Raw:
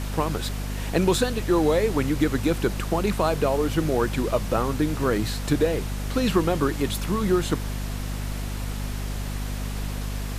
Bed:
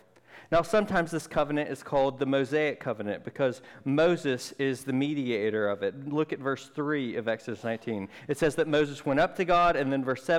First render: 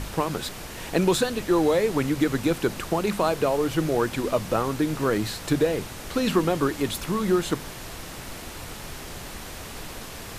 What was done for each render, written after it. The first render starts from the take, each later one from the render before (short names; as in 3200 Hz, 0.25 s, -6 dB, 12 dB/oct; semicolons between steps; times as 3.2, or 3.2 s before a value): de-hum 50 Hz, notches 5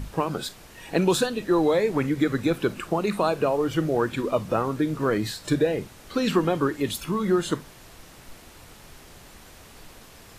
noise print and reduce 10 dB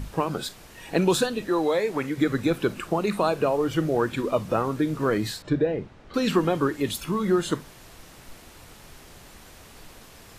1.49–2.18 low shelf 240 Hz -10.5 dB; 5.42–6.14 tape spacing loss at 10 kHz 27 dB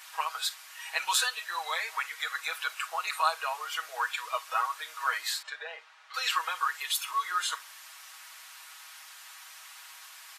inverse Chebyshev high-pass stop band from 300 Hz, stop band 60 dB; comb 6.3 ms, depth 89%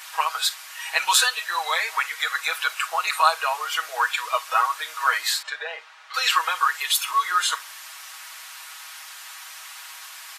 gain +8.5 dB